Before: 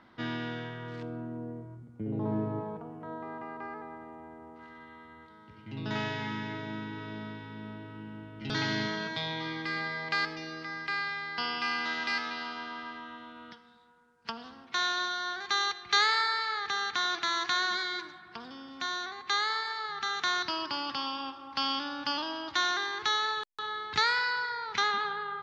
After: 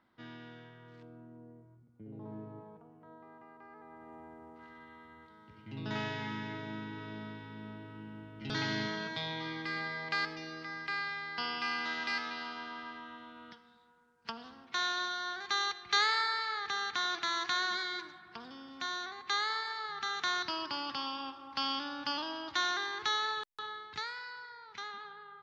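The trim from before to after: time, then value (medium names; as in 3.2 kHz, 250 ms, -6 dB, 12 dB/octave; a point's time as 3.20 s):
3.66 s -14 dB
4.15 s -3.5 dB
23.55 s -3.5 dB
24.12 s -15 dB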